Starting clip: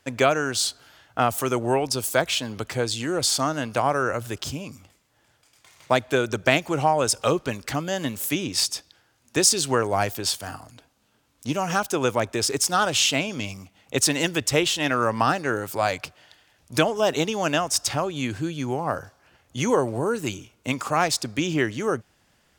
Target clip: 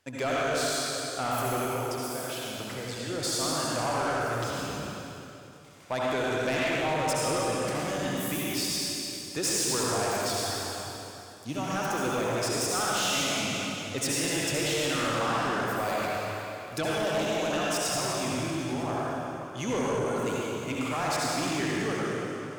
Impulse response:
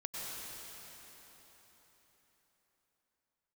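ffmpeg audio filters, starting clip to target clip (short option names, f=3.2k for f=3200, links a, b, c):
-filter_complex "[0:a]asettb=1/sr,asplit=3[a][b][c];[a]atrim=end=1.574[d];[b]atrim=start=1.57:end=3.1,asetpts=PTS-STARTPTS,afade=t=in:d=0.004:c=qsin,afade=t=out:st=1.526:d=0.004:c=qsin,acompressor=threshold=-29dB:ratio=6[e];[c]atrim=start=3.096[f];[d][e]acrossfade=d=0.004:c1=hsin:c2=qsin[g];[g][f]acrossfade=d=0.004:c1=qsin:c2=hsin[h];[1:a]atrim=start_sample=2205,asetrate=66150,aresample=44100[i];[h][i]afir=irnorm=-1:irlink=0,asoftclip=type=tanh:threshold=-23dB"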